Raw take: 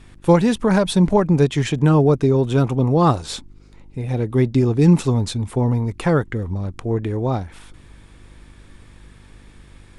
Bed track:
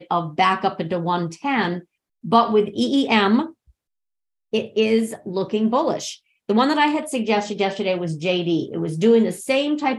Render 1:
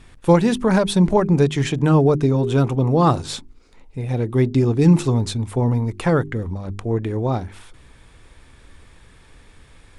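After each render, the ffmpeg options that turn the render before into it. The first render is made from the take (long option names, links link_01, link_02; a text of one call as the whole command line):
ffmpeg -i in.wav -af "bandreject=frequency=50:width_type=h:width=4,bandreject=frequency=100:width_type=h:width=4,bandreject=frequency=150:width_type=h:width=4,bandreject=frequency=200:width_type=h:width=4,bandreject=frequency=250:width_type=h:width=4,bandreject=frequency=300:width_type=h:width=4,bandreject=frequency=350:width_type=h:width=4,bandreject=frequency=400:width_type=h:width=4" out.wav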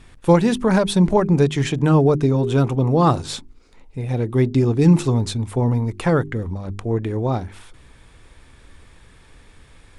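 ffmpeg -i in.wav -af anull out.wav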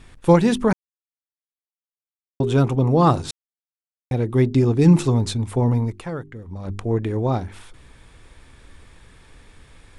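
ffmpeg -i in.wav -filter_complex "[0:a]asplit=7[link_01][link_02][link_03][link_04][link_05][link_06][link_07];[link_01]atrim=end=0.73,asetpts=PTS-STARTPTS,afade=type=out:start_time=0.726:duration=0.004:curve=hsin[link_08];[link_02]atrim=start=0.73:end=2.4,asetpts=PTS-STARTPTS,volume=0[link_09];[link_03]atrim=start=2.4:end=3.31,asetpts=PTS-STARTPTS,afade=type=in:duration=0.004:curve=hsin,afade=type=out:start_time=0.906:duration=0.004:curve=hsin[link_10];[link_04]atrim=start=3.31:end=4.11,asetpts=PTS-STARTPTS,volume=0[link_11];[link_05]atrim=start=4.11:end=6.04,asetpts=PTS-STARTPTS,afade=type=in:duration=0.004:curve=hsin,afade=type=out:start_time=1.73:duration=0.2:silence=0.251189[link_12];[link_06]atrim=start=6.04:end=6.47,asetpts=PTS-STARTPTS,volume=-12dB[link_13];[link_07]atrim=start=6.47,asetpts=PTS-STARTPTS,afade=type=in:duration=0.2:silence=0.251189[link_14];[link_08][link_09][link_10][link_11][link_12][link_13][link_14]concat=n=7:v=0:a=1" out.wav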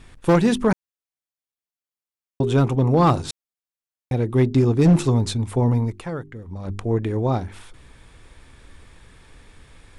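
ffmpeg -i in.wav -af "volume=10dB,asoftclip=hard,volume=-10dB" out.wav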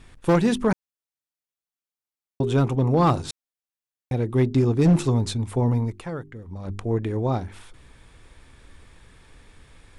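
ffmpeg -i in.wav -af "volume=-2.5dB" out.wav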